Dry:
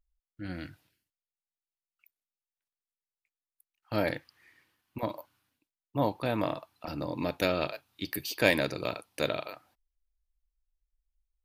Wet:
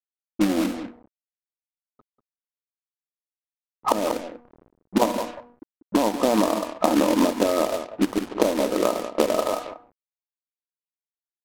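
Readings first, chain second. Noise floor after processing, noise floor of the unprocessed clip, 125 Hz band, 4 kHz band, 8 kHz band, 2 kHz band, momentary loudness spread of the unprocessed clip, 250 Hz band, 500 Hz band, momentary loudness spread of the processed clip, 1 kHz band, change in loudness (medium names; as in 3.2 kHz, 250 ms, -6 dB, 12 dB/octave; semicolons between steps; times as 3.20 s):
under -85 dBFS, under -85 dBFS, -0.5 dB, +5.0 dB, +14.0 dB, -0.5 dB, 16 LU, +12.5 dB, +9.5 dB, 13 LU, +11.5 dB, +9.0 dB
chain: local Wiener filter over 15 samples; recorder AGC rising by 17 dB/s; de-hum 241.4 Hz, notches 28; in parallel at -6 dB: saturation -3.5 dBFS, distortion -13 dB; on the sum: compression 6:1, threshold -31 dBFS, peak gain reduction 22 dB; FFT band-pass 190–1300 Hz; companded quantiser 4-bit; on a send: delay 192 ms -11.5 dB; on the sum: level-controlled noise filter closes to 360 Hz, open at -35.5 dBFS; loudness maximiser +16 dB; trim -1 dB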